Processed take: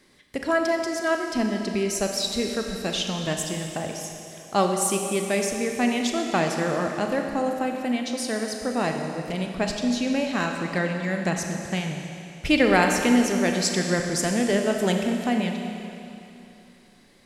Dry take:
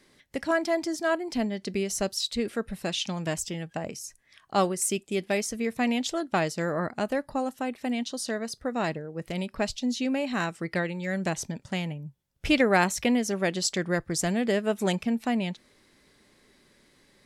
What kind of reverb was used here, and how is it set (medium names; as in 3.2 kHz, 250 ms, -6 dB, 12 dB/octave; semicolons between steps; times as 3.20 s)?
Schroeder reverb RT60 2.9 s, combs from 29 ms, DRR 3 dB; trim +2 dB